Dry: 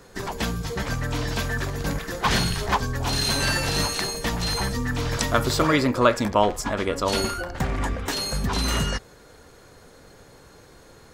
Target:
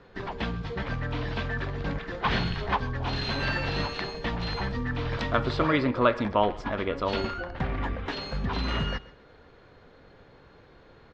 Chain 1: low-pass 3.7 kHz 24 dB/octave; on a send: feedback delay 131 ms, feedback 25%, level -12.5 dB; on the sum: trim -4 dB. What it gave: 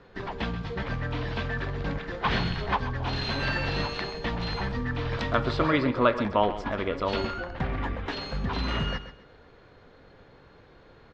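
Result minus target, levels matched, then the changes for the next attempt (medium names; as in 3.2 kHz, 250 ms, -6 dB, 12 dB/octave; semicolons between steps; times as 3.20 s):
echo-to-direct +7.5 dB
change: feedback delay 131 ms, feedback 25%, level -20 dB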